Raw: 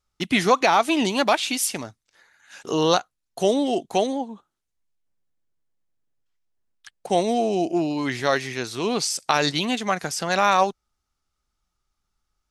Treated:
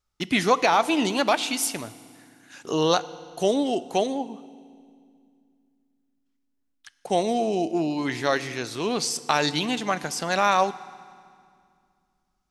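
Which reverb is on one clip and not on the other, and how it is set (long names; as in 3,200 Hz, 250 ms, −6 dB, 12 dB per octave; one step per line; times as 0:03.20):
feedback delay network reverb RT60 2.2 s, low-frequency decay 1.5×, high-frequency decay 0.9×, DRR 15.5 dB
level −2 dB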